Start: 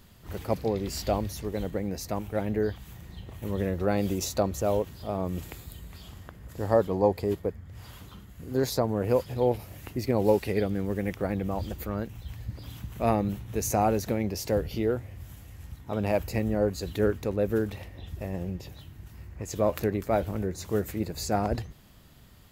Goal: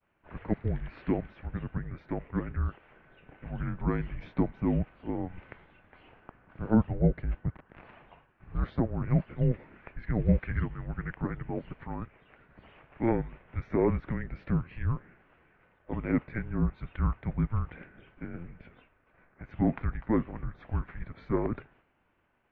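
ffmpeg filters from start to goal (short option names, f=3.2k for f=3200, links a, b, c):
-filter_complex "[0:a]asettb=1/sr,asplit=3[a][b][c];[a]atrim=end=7.534[d];[b]atrim=start=7.53:end=7.96,asetpts=PTS-STARTPTS,afade=t=in:d=0.004:c=qsin,afade=t=out:st=0.426:d=0.004:c=qsin,aeval=exprs='(mod(79.4*val(0)+1,2)-1)/79.4':c=same[e];[c]atrim=start=7.956[f];[d][e]acrossfade=d=0.004:c1=hsin:c2=qsin[g];[g][f]acrossfade=d=0.004:c1=qsin:c2=hsin,highpass=f=360:t=q:w=0.5412,highpass=f=360:t=q:w=1.307,lowpass=f=2.7k:t=q:w=0.5176,lowpass=f=2.7k:t=q:w=0.7071,lowpass=f=2.7k:t=q:w=1.932,afreqshift=-350,agate=range=-33dB:threshold=-57dB:ratio=3:detection=peak"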